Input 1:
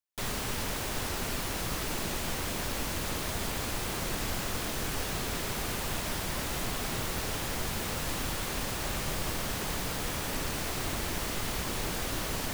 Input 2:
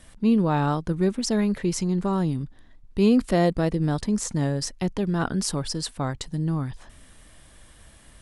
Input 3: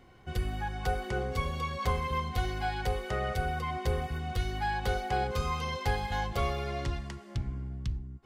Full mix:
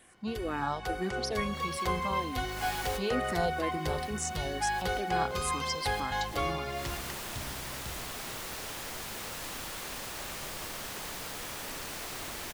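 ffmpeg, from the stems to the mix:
-filter_complex "[0:a]adelay=1350,volume=0.631[s0];[1:a]highpass=180,asplit=2[s1][s2];[s2]afreqshift=-2.2[s3];[s1][s3]amix=inputs=2:normalize=1,volume=0.668,asplit=2[s4][s5];[2:a]dynaudnorm=f=160:g=13:m=1.68,volume=0.75[s6];[s5]apad=whole_len=612153[s7];[s0][s7]sidechaincompress=threshold=0.00178:ratio=3:attack=16:release=158[s8];[s8][s4][s6]amix=inputs=3:normalize=0,lowshelf=f=300:g=-10"

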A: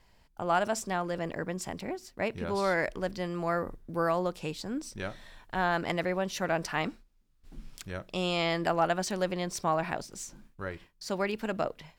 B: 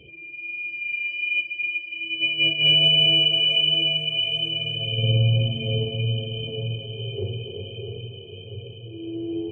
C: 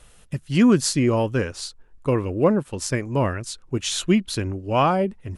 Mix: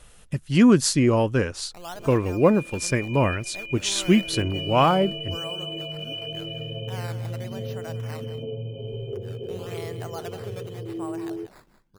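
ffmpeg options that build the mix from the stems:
-filter_complex "[0:a]acrusher=samples=10:mix=1:aa=0.000001:lfo=1:lforange=10:lforate=0.9,adelay=1350,volume=0.282,asplit=2[s0][s1];[s1]volume=0.251[s2];[1:a]equalizer=f=125:t=o:w=1:g=7,equalizer=f=250:t=o:w=1:g=9,equalizer=f=500:t=o:w=1:g=10,equalizer=f=1000:t=o:w=1:g=9,equalizer=f=2000:t=o:w=1:g=-8,acompressor=threshold=0.0631:ratio=10,adelay=1950,volume=0.531[s3];[2:a]volume=1.06[s4];[s2]aecho=0:1:185:1[s5];[s0][s3][s4][s5]amix=inputs=4:normalize=0"

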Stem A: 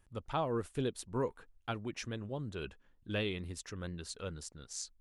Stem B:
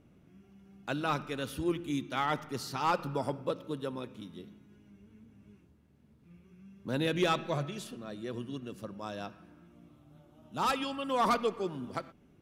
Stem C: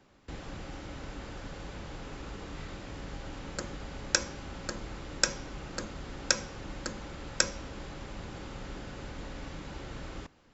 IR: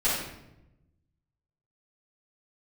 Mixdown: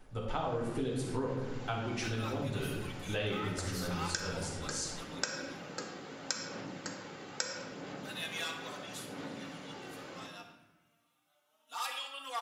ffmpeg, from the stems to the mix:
-filter_complex "[0:a]volume=0.841,asplit=2[s0][s1];[s1]volume=0.562[s2];[1:a]highpass=1100,highshelf=f=4700:g=8.5,asplit=2[s3][s4];[s4]adelay=3.7,afreqshift=1.5[s5];[s3][s5]amix=inputs=2:normalize=1,adelay=1150,volume=0.631,asplit=2[s6][s7];[s7]volume=0.211[s8];[2:a]highpass=f=150:w=0.5412,highpass=f=150:w=1.3066,aphaser=in_gain=1:out_gain=1:delay=2.6:decay=0.39:speed=0.76:type=sinusoidal,volume=0.501,asplit=2[s9][s10];[s10]volume=0.251[s11];[3:a]atrim=start_sample=2205[s12];[s2][s8][s11]amix=inputs=3:normalize=0[s13];[s13][s12]afir=irnorm=-1:irlink=0[s14];[s0][s6][s9][s14]amix=inputs=4:normalize=0,acompressor=threshold=0.0251:ratio=4"

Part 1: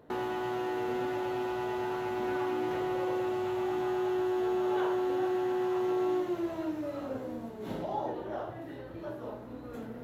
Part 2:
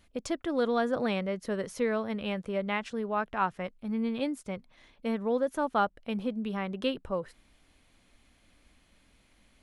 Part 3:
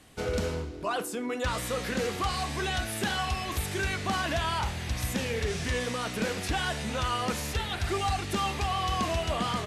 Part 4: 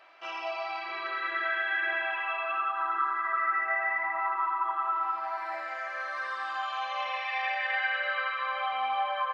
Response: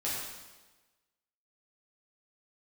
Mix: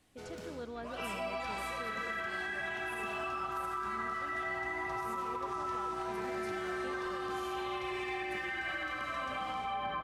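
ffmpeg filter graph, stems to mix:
-filter_complex "[0:a]bass=f=250:g=6,treble=f=4000:g=-3,adelay=2150,volume=0.2,asplit=2[s0][s1];[s1]volume=0.299[s2];[1:a]volume=0.158[s3];[2:a]acrossover=split=150|3000[s4][s5][s6];[s4]acompressor=threshold=0.00794:ratio=6[s7];[s7][s5][s6]amix=inputs=3:normalize=0,volume=22.4,asoftclip=hard,volume=0.0447,volume=0.141,asplit=2[s8][s9];[s9]volume=0.473[s10];[3:a]aeval=exprs='val(0)+0.002*(sin(2*PI*60*n/s)+sin(2*PI*2*60*n/s)/2+sin(2*PI*3*60*n/s)/3+sin(2*PI*4*60*n/s)/4+sin(2*PI*5*60*n/s)/5)':c=same,adelay=750,volume=0.631,asplit=2[s11][s12];[s12]volume=0.237[s13];[4:a]atrim=start_sample=2205[s14];[s2][s10][s13]amix=inputs=3:normalize=0[s15];[s15][s14]afir=irnorm=-1:irlink=0[s16];[s0][s3][s8][s11][s16]amix=inputs=5:normalize=0,alimiter=level_in=1.68:limit=0.0631:level=0:latency=1:release=205,volume=0.596"

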